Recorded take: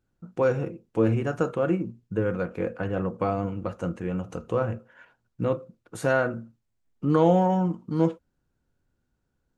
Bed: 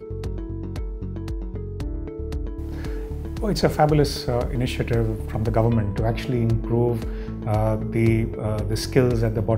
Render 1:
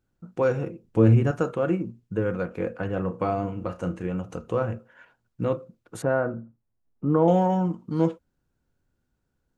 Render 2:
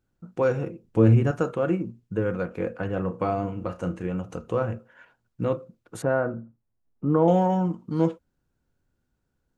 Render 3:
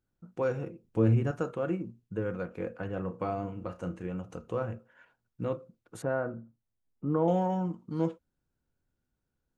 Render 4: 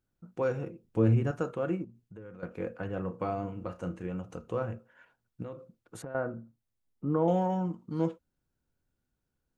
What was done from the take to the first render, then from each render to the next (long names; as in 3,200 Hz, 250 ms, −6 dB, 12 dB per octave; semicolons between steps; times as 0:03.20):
0:00.83–0:01.31: low-shelf EQ 190 Hz +12 dB; 0:03.02–0:04.07: flutter between parallel walls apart 5.7 metres, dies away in 0.2 s; 0:06.02–0:07.28: low-pass filter 1,200 Hz
no processing that can be heard
level −7 dB
0:01.84–0:02.43: downward compressor 2.5 to 1, threshold −50 dBFS; 0:05.42–0:06.15: downward compressor 12 to 1, threshold −36 dBFS